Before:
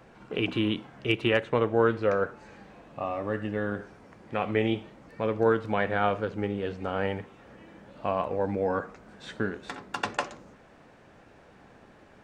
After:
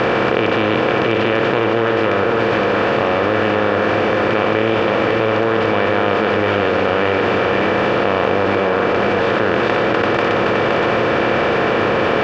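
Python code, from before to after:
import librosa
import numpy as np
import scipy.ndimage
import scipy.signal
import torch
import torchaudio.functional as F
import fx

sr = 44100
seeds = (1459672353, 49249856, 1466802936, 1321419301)

y = fx.bin_compress(x, sr, power=0.2)
y = scipy.signal.sosfilt(scipy.signal.butter(4, 5100.0, 'lowpass', fs=sr, output='sos'), y)
y = fx.peak_eq(y, sr, hz=2800.0, db=-4.0, octaves=0.24)
y = y + 10.0 ** (-5.5 / 20.0) * np.pad(y, (int(518 * sr / 1000.0), 0))[:len(y)]
y = fx.env_flatten(y, sr, amount_pct=100)
y = y * 10.0 ** (-2.5 / 20.0)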